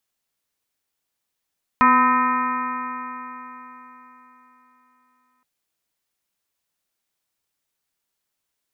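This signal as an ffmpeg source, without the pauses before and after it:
-f lavfi -i "aevalsrc='0.106*pow(10,-3*t/3.95)*sin(2*PI*248.3*t)+0.02*pow(10,-3*t/3.95)*sin(2*PI*498.38*t)+0.0211*pow(10,-3*t/3.95)*sin(2*PI*751.99*t)+0.211*pow(10,-3*t/3.95)*sin(2*PI*1010.87*t)+0.178*pow(10,-3*t/3.95)*sin(2*PI*1276.66*t)+0.0299*pow(10,-3*t/3.95)*sin(2*PI*1550.95*t)+0.0794*pow(10,-3*t/3.95)*sin(2*PI*1835.24*t)+0.0266*pow(10,-3*t/3.95)*sin(2*PI*2130.93*t)+0.0376*pow(10,-3*t/3.95)*sin(2*PI*2439.32*t)':d=3.62:s=44100"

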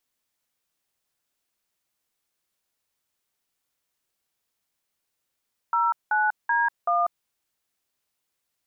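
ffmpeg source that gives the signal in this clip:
-f lavfi -i "aevalsrc='0.0794*clip(min(mod(t,0.381),0.193-mod(t,0.381))/0.002,0,1)*(eq(floor(t/0.381),0)*(sin(2*PI*941*mod(t,0.381))+sin(2*PI*1336*mod(t,0.381)))+eq(floor(t/0.381),1)*(sin(2*PI*852*mod(t,0.381))+sin(2*PI*1477*mod(t,0.381)))+eq(floor(t/0.381),2)*(sin(2*PI*941*mod(t,0.381))+sin(2*PI*1633*mod(t,0.381)))+eq(floor(t/0.381),3)*(sin(2*PI*697*mod(t,0.381))+sin(2*PI*1209*mod(t,0.381))))':d=1.524:s=44100"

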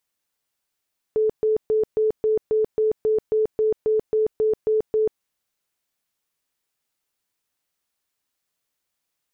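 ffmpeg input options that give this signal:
-f lavfi -i "aevalsrc='0.15*sin(2*PI*434*mod(t,0.27))*lt(mod(t,0.27),59/434)':d=4.05:s=44100"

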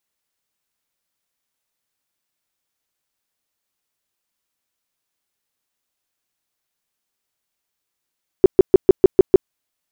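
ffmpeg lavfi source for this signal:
-f lavfi -i "aevalsrc='0.708*sin(2*PI*380*mod(t,0.15))*lt(mod(t,0.15),7/380)':d=1.05:s=44100"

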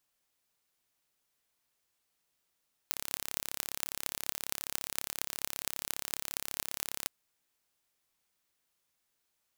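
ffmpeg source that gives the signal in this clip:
-f lavfi -i "aevalsrc='0.668*eq(mod(n,1271),0)*(0.5+0.5*eq(mod(n,10168),0))':d=4.17:s=44100"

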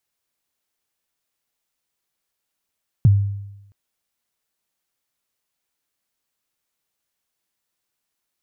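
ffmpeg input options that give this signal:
-f lavfi -i "aevalsrc='0.447*pow(10,-3*t/0.93)*sin(2*PI*(150*0.027/log(100/150)*(exp(log(100/150)*min(t,0.027)/0.027)-1)+100*max(t-0.027,0)))':d=0.67:s=44100"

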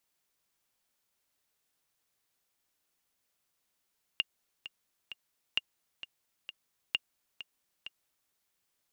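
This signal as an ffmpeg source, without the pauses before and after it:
-f lavfi -i "aevalsrc='pow(10,(-14.5-14*gte(mod(t,3*60/131),60/131))/20)*sin(2*PI*2820*mod(t,60/131))*exp(-6.91*mod(t,60/131)/0.03)':d=4.12:s=44100"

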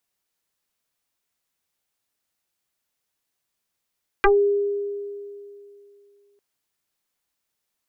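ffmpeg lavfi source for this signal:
-f lavfi -i "aevalsrc='0.266*pow(10,-3*t/2.68)*sin(2*PI*405*t+5.9*pow(10,-3*t/0.15)*sin(2*PI*0.98*405*t))':d=2.15:s=44100"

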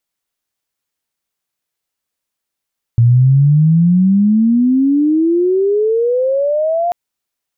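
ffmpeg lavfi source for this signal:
-f lavfi -i "aevalsrc='pow(10,(-5.5-7*t/3.94)/20)*sin(2*PI*115*3.94/(31.5*log(2)/12)*(exp(31.5*log(2)/12*t/3.94)-1))':d=3.94:s=44100"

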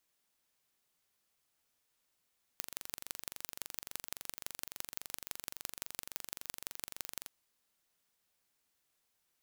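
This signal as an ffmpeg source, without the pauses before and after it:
-f lavfi -i "aevalsrc='0.316*eq(mod(n,1869),0)*(0.5+0.5*eq(mod(n,7476),0))':d=4.68:s=44100"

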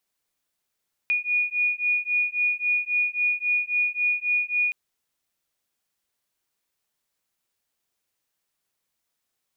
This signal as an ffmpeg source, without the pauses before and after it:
-f lavfi -i "aevalsrc='0.0596*(sin(2*PI*2450*t)+sin(2*PI*2453.7*t))':d=3.62:s=44100"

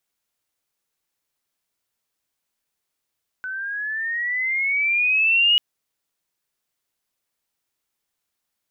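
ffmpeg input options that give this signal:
-f lavfi -i "aevalsrc='pow(10,(-13+14*(t/2.14-1))/20)*sin(2*PI*1500*2.14/(11.5*log(2)/12)*(exp(11.5*log(2)/12*t/2.14)-1))':d=2.14:s=44100"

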